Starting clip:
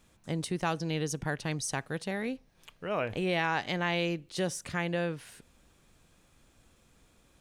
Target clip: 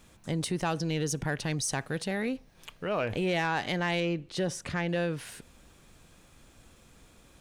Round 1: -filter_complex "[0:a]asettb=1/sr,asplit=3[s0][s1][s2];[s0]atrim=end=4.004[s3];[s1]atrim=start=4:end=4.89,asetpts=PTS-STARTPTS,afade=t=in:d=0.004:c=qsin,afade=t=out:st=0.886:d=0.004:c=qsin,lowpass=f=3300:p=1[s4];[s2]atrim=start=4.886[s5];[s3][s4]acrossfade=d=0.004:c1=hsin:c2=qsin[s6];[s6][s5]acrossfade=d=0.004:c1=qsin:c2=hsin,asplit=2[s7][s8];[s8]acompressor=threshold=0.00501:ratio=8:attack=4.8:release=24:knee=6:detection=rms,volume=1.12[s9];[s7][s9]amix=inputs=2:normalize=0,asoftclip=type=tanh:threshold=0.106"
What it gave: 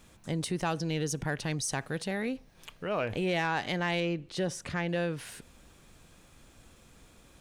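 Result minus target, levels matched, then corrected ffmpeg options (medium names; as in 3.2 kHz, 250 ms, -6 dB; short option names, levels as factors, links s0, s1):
compression: peak gain reduction +7 dB
-filter_complex "[0:a]asettb=1/sr,asplit=3[s0][s1][s2];[s0]atrim=end=4.004[s3];[s1]atrim=start=4:end=4.89,asetpts=PTS-STARTPTS,afade=t=in:d=0.004:c=qsin,afade=t=out:st=0.886:d=0.004:c=qsin,lowpass=f=3300:p=1[s4];[s2]atrim=start=4.886[s5];[s3][s4]acrossfade=d=0.004:c1=hsin:c2=qsin[s6];[s6][s5]acrossfade=d=0.004:c1=qsin:c2=hsin,asplit=2[s7][s8];[s8]acompressor=threshold=0.0126:ratio=8:attack=4.8:release=24:knee=6:detection=rms,volume=1.12[s9];[s7][s9]amix=inputs=2:normalize=0,asoftclip=type=tanh:threshold=0.106"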